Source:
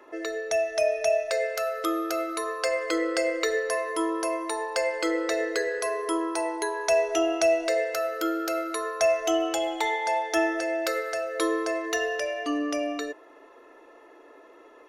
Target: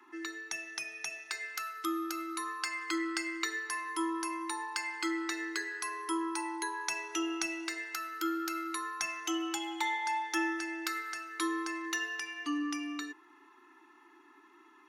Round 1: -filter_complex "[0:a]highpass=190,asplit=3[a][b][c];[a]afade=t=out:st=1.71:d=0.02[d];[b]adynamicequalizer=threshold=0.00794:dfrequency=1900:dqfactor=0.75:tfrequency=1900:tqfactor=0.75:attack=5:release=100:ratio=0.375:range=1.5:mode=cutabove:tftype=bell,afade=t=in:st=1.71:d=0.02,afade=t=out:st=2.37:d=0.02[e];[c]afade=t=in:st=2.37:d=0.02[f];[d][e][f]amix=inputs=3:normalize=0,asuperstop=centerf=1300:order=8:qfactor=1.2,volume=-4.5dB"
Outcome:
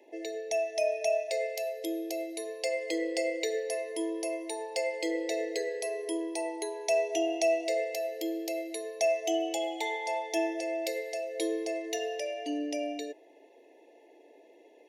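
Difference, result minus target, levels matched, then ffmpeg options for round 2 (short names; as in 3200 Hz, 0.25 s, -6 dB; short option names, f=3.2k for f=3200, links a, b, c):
500 Hz band +12.5 dB
-filter_complex "[0:a]highpass=190,asplit=3[a][b][c];[a]afade=t=out:st=1.71:d=0.02[d];[b]adynamicequalizer=threshold=0.00794:dfrequency=1900:dqfactor=0.75:tfrequency=1900:tqfactor=0.75:attack=5:release=100:ratio=0.375:range=1.5:mode=cutabove:tftype=bell,afade=t=in:st=1.71:d=0.02,afade=t=out:st=2.37:d=0.02[e];[c]afade=t=in:st=2.37:d=0.02[f];[d][e][f]amix=inputs=3:normalize=0,asuperstop=centerf=550:order=8:qfactor=1.2,volume=-4.5dB"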